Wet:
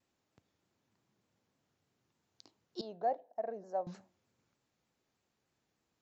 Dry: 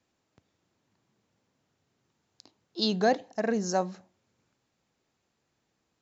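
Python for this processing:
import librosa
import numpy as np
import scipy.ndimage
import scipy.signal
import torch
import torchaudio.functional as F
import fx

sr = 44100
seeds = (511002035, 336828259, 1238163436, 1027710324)

y = fx.bandpass_q(x, sr, hz=640.0, q=3.4, at=(2.81, 3.87))
y = fx.vibrato_shape(y, sr, shape='saw_down', rate_hz=3.3, depth_cents=100.0)
y = y * 10.0 ** (-5.0 / 20.0)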